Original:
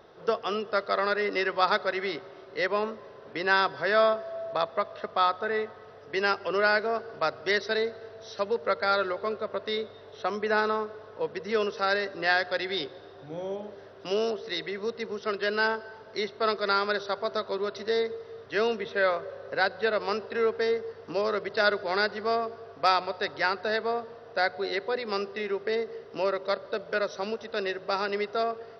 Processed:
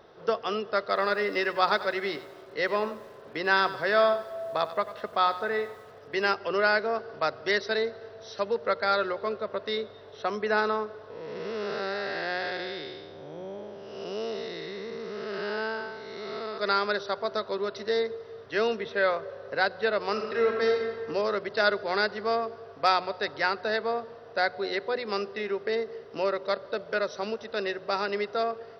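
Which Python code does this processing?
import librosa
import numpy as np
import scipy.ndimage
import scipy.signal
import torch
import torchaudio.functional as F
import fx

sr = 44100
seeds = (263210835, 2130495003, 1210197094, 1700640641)

y = fx.echo_crushed(x, sr, ms=94, feedback_pct=35, bits=8, wet_db=-14.0, at=(0.8, 6.33))
y = fx.spec_blur(y, sr, span_ms=373.0, at=(11.1, 16.58))
y = fx.reverb_throw(y, sr, start_s=20.11, length_s=0.87, rt60_s=1.6, drr_db=1.5)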